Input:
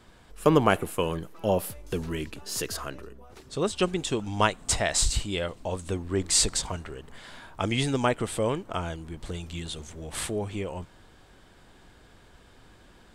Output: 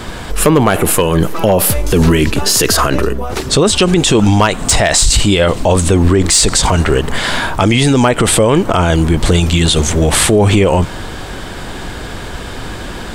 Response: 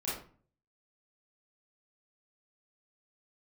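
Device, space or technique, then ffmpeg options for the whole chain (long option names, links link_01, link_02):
loud club master: -af "acompressor=threshold=-28dB:ratio=2,asoftclip=type=hard:threshold=-19dB,alimiter=level_in=30.5dB:limit=-1dB:release=50:level=0:latency=1,volume=-1dB"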